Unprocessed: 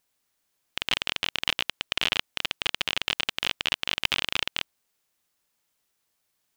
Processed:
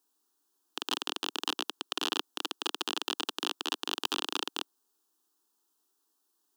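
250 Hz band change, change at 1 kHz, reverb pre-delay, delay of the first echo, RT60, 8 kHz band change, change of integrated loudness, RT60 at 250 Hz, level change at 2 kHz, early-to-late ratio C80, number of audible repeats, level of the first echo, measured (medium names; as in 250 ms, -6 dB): +3.0 dB, -0.5 dB, no reverb, no echo, no reverb, -1.0 dB, -6.5 dB, no reverb, -11.0 dB, no reverb, no echo, no echo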